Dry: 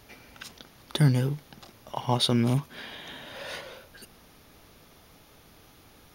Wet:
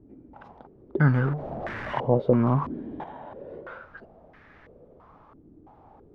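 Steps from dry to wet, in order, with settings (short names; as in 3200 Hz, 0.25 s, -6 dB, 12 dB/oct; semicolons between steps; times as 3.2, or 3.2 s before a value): 1.05–3.04 zero-crossing step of -31 dBFS; stepped low-pass 3 Hz 310–1800 Hz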